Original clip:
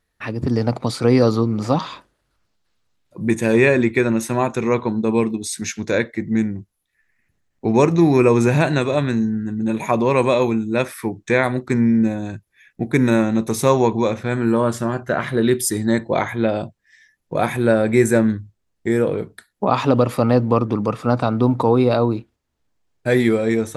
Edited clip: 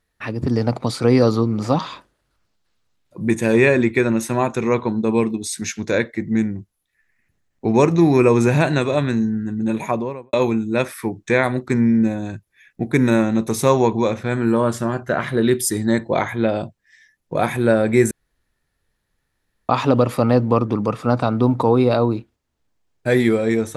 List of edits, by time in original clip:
0:09.73–0:10.33: fade out and dull
0:18.11–0:19.69: fill with room tone

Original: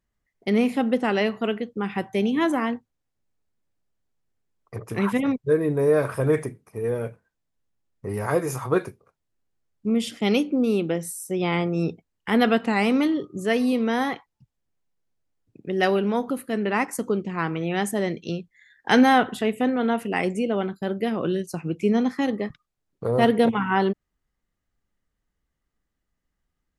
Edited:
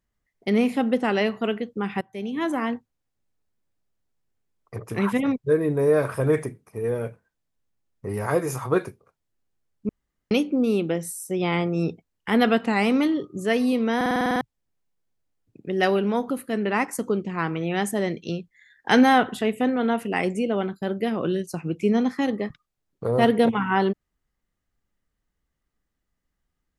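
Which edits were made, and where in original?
0:02.01–0:02.74: fade in, from −19 dB
0:09.89–0:10.31: fill with room tone
0:13.96: stutter in place 0.05 s, 9 plays

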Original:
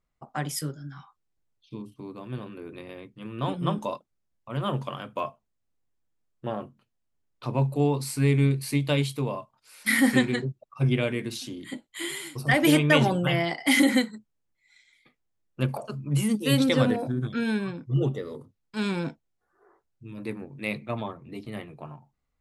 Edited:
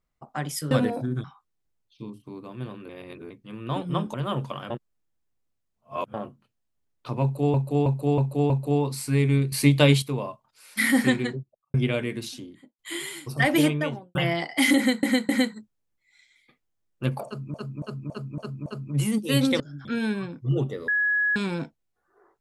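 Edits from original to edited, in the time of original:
0:00.71–0:00.96: swap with 0:16.77–0:17.30
0:02.61–0:03.02: reverse
0:03.86–0:04.51: remove
0:05.07–0:06.51: reverse
0:07.59–0:07.91: repeat, 5 plays
0:08.61–0:09.11: clip gain +7 dB
0:10.25–0:10.83: fade out and dull
0:11.33–0:11.88: fade out and dull
0:12.59–0:13.24: fade out and dull
0:13.86–0:14.12: repeat, 3 plays
0:15.83–0:16.11: repeat, 6 plays
0:18.33–0:18.81: beep over 1,680 Hz −20 dBFS

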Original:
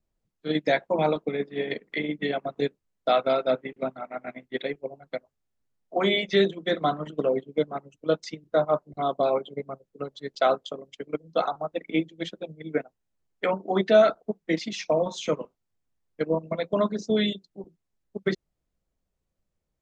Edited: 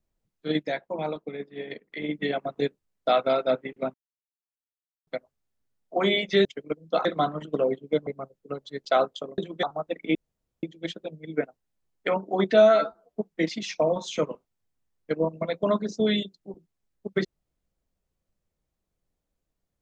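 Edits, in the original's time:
0:00.63–0:02.02: clip gain −7 dB
0:03.94–0:05.07: silence
0:06.45–0:06.70: swap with 0:10.88–0:11.48
0:07.72–0:09.57: remove
0:12.00: splice in room tone 0.48 s
0:13.99–0:14.26: time-stretch 2×

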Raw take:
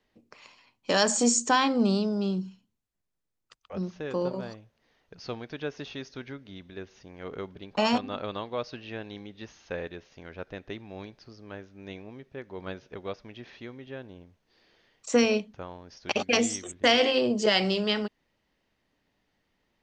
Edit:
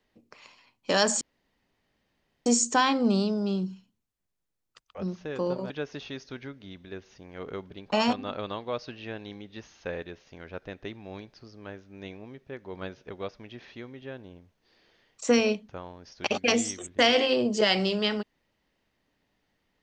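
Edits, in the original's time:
0:01.21: splice in room tone 1.25 s
0:04.45–0:05.55: remove

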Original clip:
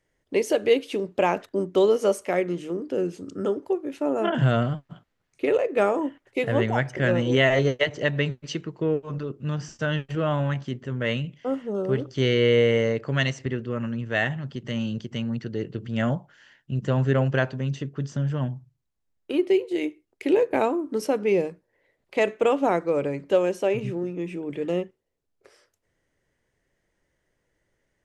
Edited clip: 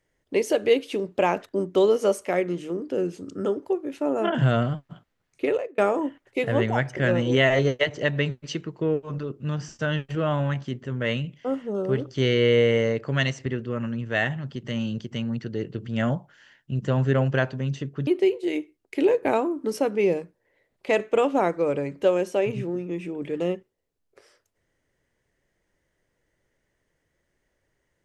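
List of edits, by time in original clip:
0:05.45–0:05.78: fade out
0:18.07–0:19.35: remove

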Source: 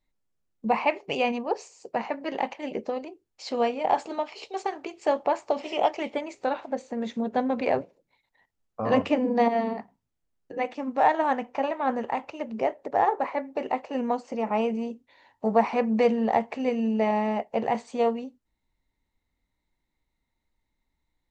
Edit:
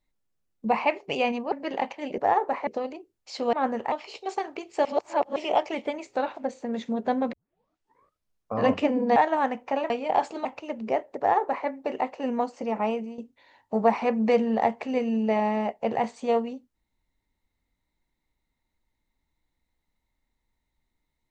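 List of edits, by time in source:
0:01.52–0:02.13: remove
0:03.65–0:04.20: swap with 0:11.77–0:12.16
0:05.13–0:05.64: reverse
0:07.61: tape start 1.21 s
0:09.44–0:11.03: remove
0:12.89–0:13.38: duplicate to 0:02.79
0:14.51–0:14.89: fade out, to −12 dB

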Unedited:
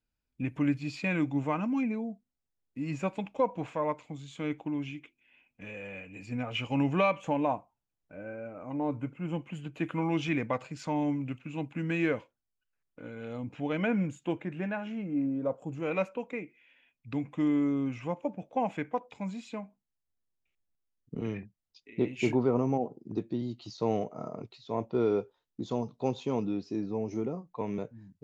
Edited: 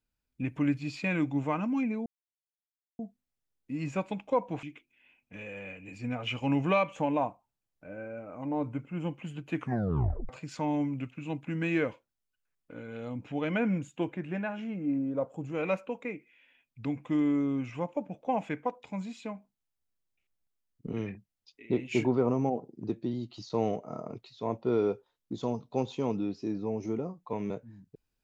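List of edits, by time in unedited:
0:02.06: splice in silence 0.93 s
0:03.70–0:04.91: remove
0:09.83: tape stop 0.74 s

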